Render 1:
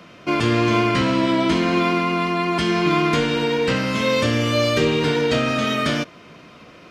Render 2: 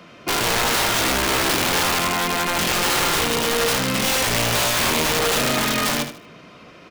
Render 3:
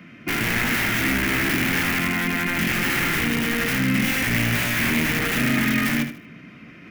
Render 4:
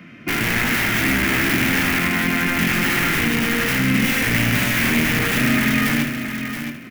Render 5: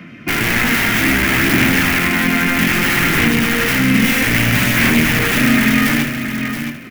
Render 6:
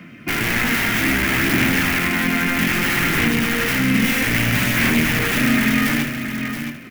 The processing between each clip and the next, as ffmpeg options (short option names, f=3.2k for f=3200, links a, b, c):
-af "aeval=exprs='(mod(5.62*val(0)+1,2)-1)/5.62':c=same,bandreject=f=50:t=h:w=6,bandreject=f=100:t=h:w=6,bandreject=f=150:t=h:w=6,bandreject=f=200:t=h:w=6,bandreject=f=250:t=h:w=6,bandreject=f=300:t=h:w=6,bandreject=f=350:t=h:w=6,aecho=1:1:77|154|231:0.316|0.0885|0.0248"
-af "equalizer=f=125:t=o:w=1:g=4,equalizer=f=250:t=o:w=1:g=9,equalizer=f=500:t=o:w=1:g=-9,equalizer=f=1k:t=o:w=1:g=-9,equalizer=f=2k:t=o:w=1:g=10,equalizer=f=4k:t=o:w=1:g=-9,equalizer=f=8k:t=o:w=1:g=-7,areverse,acompressor=mode=upward:threshold=-38dB:ratio=2.5,areverse,volume=-2dB"
-af "aecho=1:1:673|1346:0.376|0.0601,volume=2.5dB"
-af "aphaser=in_gain=1:out_gain=1:delay=4.4:decay=0.21:speed=0.62:type=sinusoidal,volume=4dB"
-af "acrusher=bits=9:mix=0:aa=0.000001,volume=-4dB"